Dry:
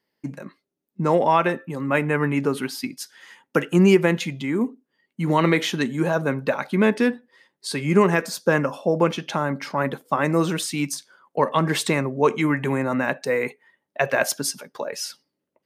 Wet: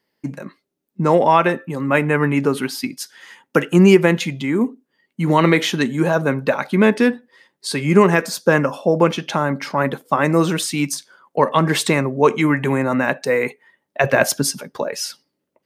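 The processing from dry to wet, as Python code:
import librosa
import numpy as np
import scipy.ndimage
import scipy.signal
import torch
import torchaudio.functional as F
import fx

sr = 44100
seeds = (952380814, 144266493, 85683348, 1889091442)

y = fx.low_shelf(x, sr, hz=250.0, db=10.5, at=(14.04, 14.88))
y = y * 10.0 ** (4.5 / 20.0)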